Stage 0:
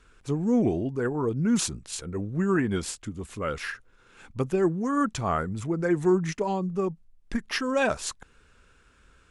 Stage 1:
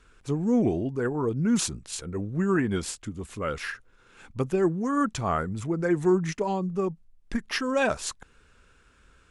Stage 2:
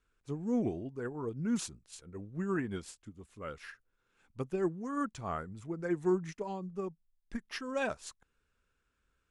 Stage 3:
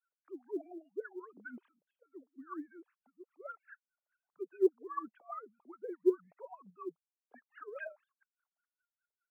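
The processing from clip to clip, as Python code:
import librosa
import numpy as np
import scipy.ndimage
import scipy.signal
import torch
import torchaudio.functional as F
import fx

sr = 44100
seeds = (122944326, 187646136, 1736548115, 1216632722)

y1 = x
y2 = fx.upward_expand(y1, sr, threshold_db=-43.0, expansion=1.5)
y2 = y2 * librosa.db_to_amplitude(-7.0)
y3 = fx.sine_speech(y2, sr)
y3 = fx.wah_lfo(y3, sr, hz=4.9, low_hz=360.0, high_hz=1600.0, q=6.7)
y3 = fx.quant_float(y3, sr, bits=6)
y3 = y3 * librosa.db_to_amplitude(4.5)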